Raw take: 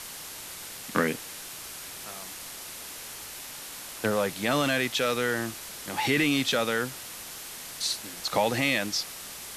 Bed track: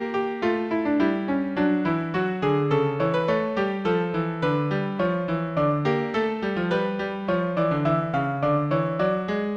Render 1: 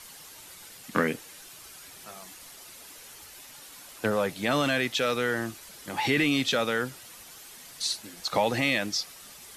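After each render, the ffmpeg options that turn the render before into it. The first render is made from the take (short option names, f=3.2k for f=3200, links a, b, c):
-af "afftdn=nr=9:nf=-41"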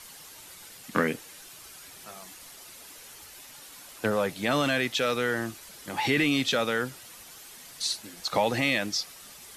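-af anull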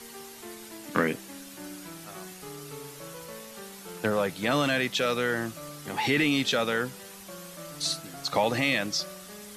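-filter_complex "[1:a]volume=-21dB[a];[0:a][a]amix=inputs=2:normalize=0"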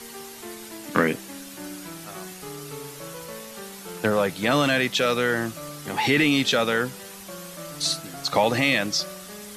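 -af "volume=4.5dB"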